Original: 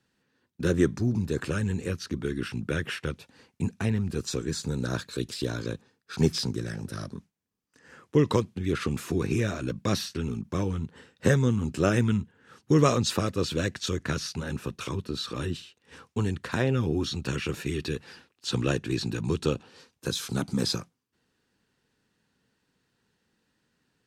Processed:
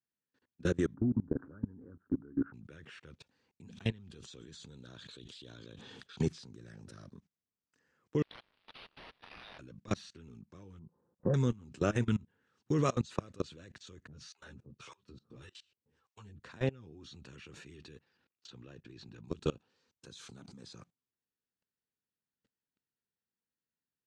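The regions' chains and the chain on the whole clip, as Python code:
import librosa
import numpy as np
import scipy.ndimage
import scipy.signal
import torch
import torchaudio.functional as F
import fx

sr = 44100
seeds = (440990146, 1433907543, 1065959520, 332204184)

y = fx.chain(x, sr, fx.cheby1_lowpass(hz=1500.0, order=5),
    fx.peak_eq(hz=270.0, db=14.0, octaves=0.32), at=(0.94, 2.54))
y = fx.chain(y, sr, fx.peak_eq(hz=3300.0, db=14.0, octaves=0.42),
    fx.sustainer(db_per_s=38.0), at=(3.67, 6.22))
y = fx.chain(y, sr, fx.zero_step(step_db=-33.5),
    fx.cheby1_highpass(hz=2800.0, order=4),
    fx.resample_linear(factor=6), at=(8.22, 9.59))
y = fx.chain(y, sr, fx.cheby1_lowpass(hz=1100.0, order=4),
    fx.comb(ms=5.7, depth=0.36), at=(10.79, 11.34))
y = fx.chain(y, sr, fx.harmonic_tremolo(hz=1.7, depth_pct=100, crossover_hz=650.0),
    fx.peak_eq(hz=120.0, db=8.5, octaves=0.56),
    fx.ensemble(), at=(14.07, 16.42))
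y = fx.chain(y, sr, fx.level_steps(step_db=10),
    fx.air_absorb(metres=90.0), at=(17.99, 19.28))
y = scipy.signal.sosfilt(scipy.signal.butter(4, 7900.0, 'lowpass', fs=sr, output='sos'), y)
y = fx.dynamic_eq(y, sr, hz=5200.0, q=7.2, threshold_db=-55.0, ratio=4.0, max_db=-7)
y = fx.level_steps(y, sr, step_db=24)
y = F.gain(torch.from_numpy(y), -4.0).numpy()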